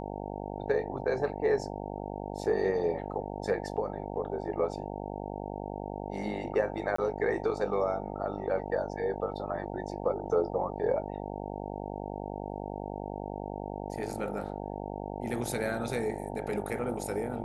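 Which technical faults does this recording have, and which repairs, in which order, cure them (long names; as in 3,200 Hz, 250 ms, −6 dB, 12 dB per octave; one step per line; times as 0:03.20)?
mains buzz 50 Hz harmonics 18 −38 dBFS
0:06.96–0:06.98: drop-out 24 ms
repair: hum removal 50 Hz, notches 18
repair the gap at 0:06.96, 24 ms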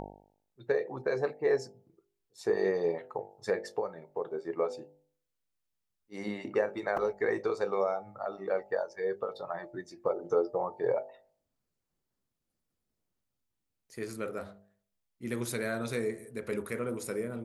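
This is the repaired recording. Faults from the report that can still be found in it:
none of them is left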